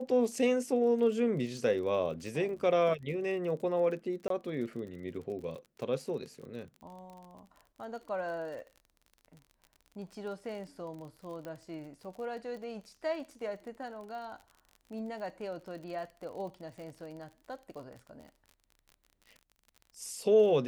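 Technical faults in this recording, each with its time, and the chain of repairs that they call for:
crackle 44 per s -43 dBFS
4.28–4.30 s: dropout 23 ms
11.45 s: pop -30 dBFS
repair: de-click; interpolate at 4.28 s, 23 ms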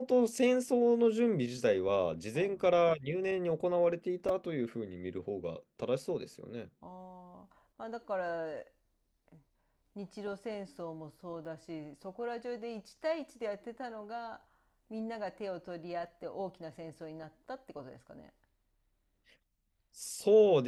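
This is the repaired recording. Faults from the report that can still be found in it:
11.45 s: pop

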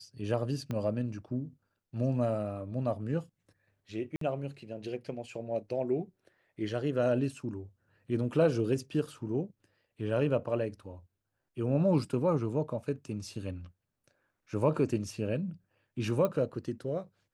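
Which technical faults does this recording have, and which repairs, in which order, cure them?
0.71 s: pop -23 dBFS
4.16–4.21 s: dropout 53 ms
16.25 s: pop -18 dBFS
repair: de-click; interpolate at 4.16 s, 53 ms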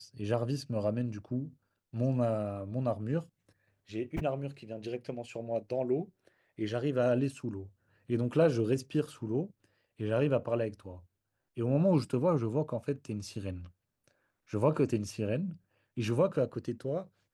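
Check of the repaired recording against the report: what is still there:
0.71 s: pop

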